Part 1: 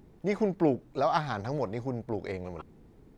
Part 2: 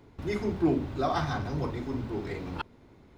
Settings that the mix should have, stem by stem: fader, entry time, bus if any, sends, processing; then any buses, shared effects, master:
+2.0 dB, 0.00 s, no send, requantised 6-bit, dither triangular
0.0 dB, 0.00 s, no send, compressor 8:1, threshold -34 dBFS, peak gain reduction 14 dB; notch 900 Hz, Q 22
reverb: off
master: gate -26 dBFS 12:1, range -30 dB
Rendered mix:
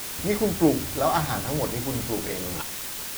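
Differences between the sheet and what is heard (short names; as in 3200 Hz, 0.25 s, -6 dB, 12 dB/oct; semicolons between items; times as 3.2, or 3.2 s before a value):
stem 2: missing compressor 8:1, threshold -34 dBFS, peak gain reduction 14 dB; master: missing gate -26 dBFS 12:1, range -30 dB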